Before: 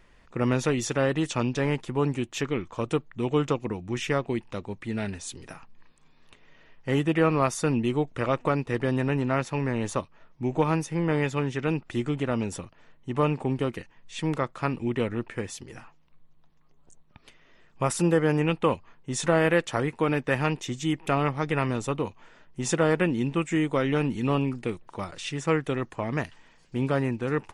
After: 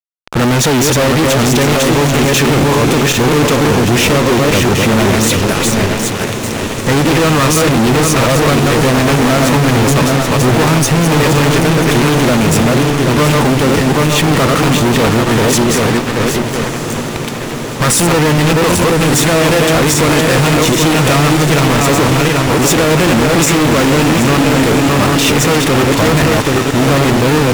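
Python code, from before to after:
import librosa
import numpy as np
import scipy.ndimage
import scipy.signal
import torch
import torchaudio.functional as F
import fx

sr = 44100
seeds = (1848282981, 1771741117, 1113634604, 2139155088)

y = fx.reverse_delay_fb(x, sr, ms=391, feedback_pct=50, wet_db=-5.5)
y = fx.fuzz(y, sr, gain_db=48.0, gate_db=-46.0)
y = fx.echo_diffused(y, sr, ms=1258, feedback_pct=72, wet_db=-11)
y = y * 10.0 ** (3.5 / 20.0)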